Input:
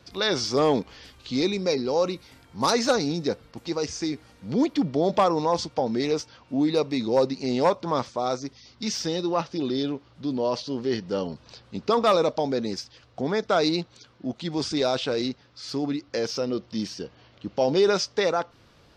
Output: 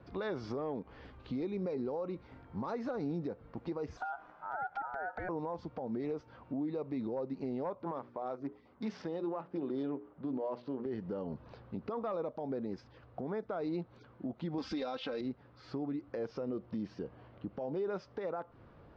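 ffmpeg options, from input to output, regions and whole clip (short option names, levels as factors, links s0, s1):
-filter_complex "[0:a]asettb=1/sr,asplit=3[s0][s1][s2];[s0]atrim=end=3.974[s3];[s1]atrim=start=3.97:end=5.29,asetpts=PTS-STARTPTS,afade=t=in:d=0.004:c=qsin,afade=t=out:st=1.316:d=0.004:c=qsin,equalizer=f=370:w=3.5:g=14,acompressor=threshold=0.0224:ratio=3:attack=3.2:release=140:knee=1:detection=peak,aeval=exprs='val(0)*sin(2*PI*1100*n/s)':c=same[s4];[s2]atrim=start=5.286[s5];[s3][s4]acrossfade=d=0.004:c1=hsin:c2=qsin[s6];[s6][s5]acrossfade=d=0.004:c1=qsin:c2=hsin,asettb=1/sr,asplit=3[s7][s8][s9];[s7]atrim=end=7.834[s10];[s8]atrim=start=7.83:end=10.86,asetpts=PTS-STARTPTS,afade=t=in:d=0.004:c=qsin,afade=t=out:st=3.026:d=0.004:c=qsin,bandreject=f=60:t=h:w=6,bandreject=f=120:t=h:w=6,bandreject=f=180:t=h:w=6,bandreject=f=240:t=h:w=6,bandreject=f=300:t=h:w=6,bandreject=f=360:t=h:w=6,bandreject=f=420:t=h:w=6,adynamicsmooth=sensitivity=6.5:basefreq=2200,highpass=f=240:p=1[s11];[s9]atrim=start=10.856[s12];[s10][s11]acrossfade=d=0.004:c1=hsin:c2=qsin[s13];[s13][s12]acrossfade=d=0.004:c1=qsin:c2=hsin,asettb=1/sr,asplit=3[s14][s15][s16];[s14]atrim=end=14.584[s17];[s15]atrim=start=14.58:end=15.21,asetpts=PTS-STARTPTS,afade=t=in:d=0.004:c=qsin,afade=t=out:st=0.626:d=0.004:c=qsin,equalizer=f=4300:w=0.39:g=14,aecho=1:1:3.8:0.66,atrim=end_sample=27783[s18];[s16]atrim=start=15.206[s19];[s17][s18]acrossfade=d=0.004:c1=hsin:c2=qsin[s20];[s20][s19]acrossfade=d=0.004:c1=qsin:c2=hsin,lowpass=1300,acompressor=threshold=0.0282:ratio=6,alimiter=level_in=1.78:limit=0.0631:level=0:latency=1:release=135,volume=0.562"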